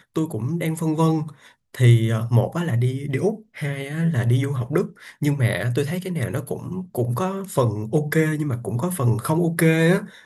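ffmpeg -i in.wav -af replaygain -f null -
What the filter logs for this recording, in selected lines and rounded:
track_gain = +2.6 dB
track_peak = 0.441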